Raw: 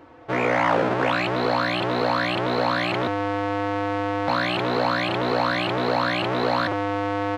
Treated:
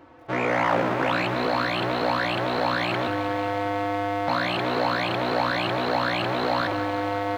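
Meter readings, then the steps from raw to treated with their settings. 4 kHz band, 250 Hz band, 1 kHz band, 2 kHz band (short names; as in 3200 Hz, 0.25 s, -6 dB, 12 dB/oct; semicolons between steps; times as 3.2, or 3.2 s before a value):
-1.5 dB, -2.5 dB, -1.0 dB, -1.5 dB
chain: notch 450 Hz, Q 12; lo-fi delay 0.183 s, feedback 80%, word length 8-bit, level -12 dB; gain -2 dB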